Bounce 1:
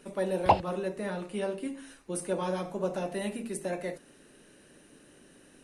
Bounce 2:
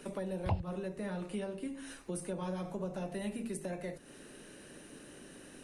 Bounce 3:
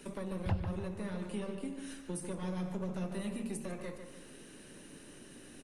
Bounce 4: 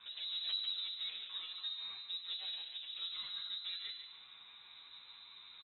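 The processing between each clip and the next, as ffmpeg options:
-filter_complex "[0:a]acrossover=split=150[s0][s1];[s1]acompressor=threshold=0.00631:ratio=5[s2];[s0][s2]amix=inputs=2:normalize=0,volume=1.68"
-filter_complex "[0:a]acrossover=split=390|1900[s0][s1][s2];[s1]aeval=exprs='max(val(0),0)':c=same[s3];[s0][s3][s2]amix=inputs=3:normalize=0,asplit=2[s4][s5];[s5]adelay=147,lowpass=f=3200:p=1,volume=0.447,asplit=2[s6][s7];[s7]adelay=147,lowpass=f=3200:p=1,volume=0.46,asplit=2[s8][s9];[s9]adelay=147,lowpass=f=3200:p=1,volume=0.46,asplit=2[s10][s11];[s11]adelay=147,lowpass=f=3200:p=1,volume=0.46,asplit=2[s12][s13];[s13]adelay=147,lowpass=f=3200:p=1,volume=0.46[s14];[s4][s6][s8][s10][s12][s14]amix=inputs=6:normalize=0"
-filter_complex "[0:a]aresample=11025,volume=47.3,asoftclip=hard,volume=0.0211,aresample=44100,lowpass=f=3400:t=q:w=0.5098,lowpass=f=3400:t=q:w=0.6013,lowpass=f=3400:t=q:w=0.9,lowpass=f=3400:t=q:w=2.563,afreqshift=-4000,asplit=2[s0][s1];[s1]adelay=10.6,afreqshift=-0.65[s2];[s0][s2]amix=inputs=2:normalize=1"

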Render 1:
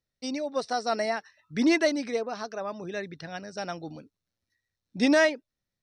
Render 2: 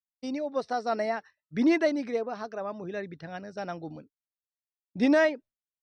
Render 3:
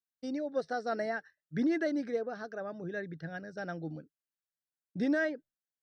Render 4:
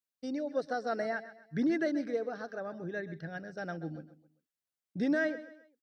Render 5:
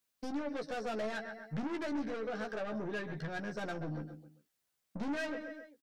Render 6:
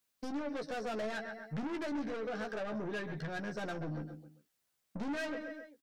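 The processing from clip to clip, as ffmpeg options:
-af "agate=range=0.0224:threshold=0.00794:ratio=3:detection=peak,lowpass=f=1700:p=1"
-af "equalizer=f=160:t=o:w=0.33:g=9,equalizer=f=315:t=o:w=0.33:g=5,equalizer=f=500:t=o:w=0.33:g=4,equalizer=f=1000:t=o:w=0.33:g=-11,equalizer=f=1600:t=o:w=0.33:g=10,equalizer=f=2500:t=o:w=0.33:g=-8,alimiter=limit=0.141:level=0:latency=1:release=120,volume=0.531"
-af "aecho=1:1:131|262|393:0.178|0.0676|0.0257"
-filter_complex "[0:a]acompressor=threshold=0.00708:ratio=2,aeval=exprs='(tanh(178*val(0)+0.2)-tanh(0.2))/178':c=same,asplit=2[s0][s1];[s1]adelay=14,volume=0.562[s2];[s0][s2]amix=inputs=2:normalize=0,volume=2.82"
-af "asoftclip=type=tanh:threshold=0.0224,volume=1.19"

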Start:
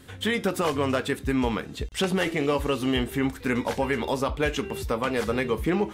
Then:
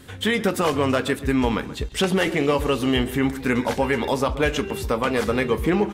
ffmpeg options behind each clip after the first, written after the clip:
-filter_complex "[0:a]asplit=2[s0][s1];[s1]adelay=131,lowpass=f=1900:p=1,volume=0.2,asplit=2[s2][s3];[s3]adelay=131,lowpass=f=1900:p=1,volume=0.31,asplit=2[s4][s5];[s5]adelay=131,lowpass=f=1900:p=1,volume=0.31[s6];[s0][s2][s4][s6]amix=inputs=4:normalize=0,volume=1.58"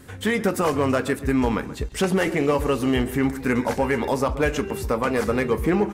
-af "asoftclip=type=hard:threshold=0.237,equalizer=f=3400:t=o:w=0.7:g=-8"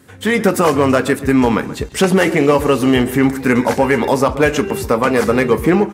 -af "dynaudnorm=f=170:g=3:m=3.76,highpass=99,volume=0.891"

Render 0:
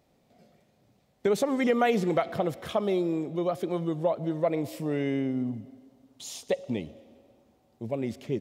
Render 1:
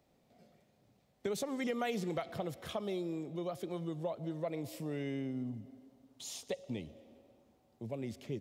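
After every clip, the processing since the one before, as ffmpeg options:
-filter_complex "[0:a]acrossover=split=130|3000[s0][s1][s2];[s1]acompressor=threshold=0.00708:ratio=1.5[s3];[s0][s3][s2]amix=inputs=3:normalize=0,volume=0.596"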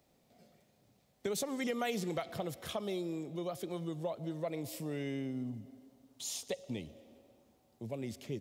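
-af "highshelf=f=4300:g=7"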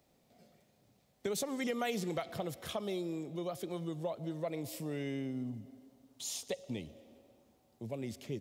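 -af anull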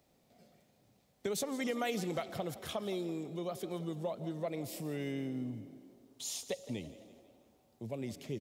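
-filter_complex "[0:a]asplit=6[s0][s1][s2][s3][s4][s5];[s1]adelay=166,afreqshift=35,volume=0.15[s6];[s2]adelay=332,afreqshift=70,volume=0.0767[s7];[s3]adelay=498,afreqshift=105,volume=0.0389[s8];[s4]adelay=664,afreqshift=140,volume=0.02[s9];[s5]adelay=830,afreqshift=175,volume=0.0101[s10];[s0][s6][s7][s8][s9][s10]amix=inputs=6:normalize=0"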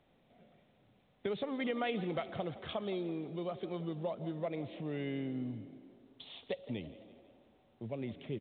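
-ar 8000 -c:a pcm_mulaw

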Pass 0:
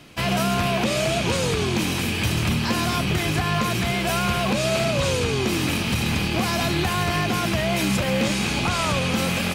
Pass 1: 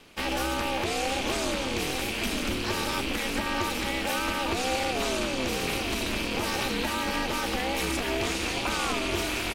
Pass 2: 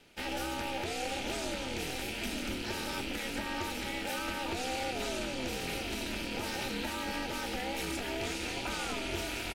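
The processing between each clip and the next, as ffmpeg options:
-af "aeval=exprs='val(0)*sin(2*PI*130*n/s)':c=same,lowshelf=f=300:g=-5.5,aecho=1:1:900:0.376,volume=0.794"
-filter_complex "[0:a]asuperstop=centerf=1100:order=4:qfactor=5.8,asplit=2[s0][s1];[s1]adelay=24,volume=0.282[s2];[s0][s2]amix=inputs=2:normalize=0,volume=0.422"

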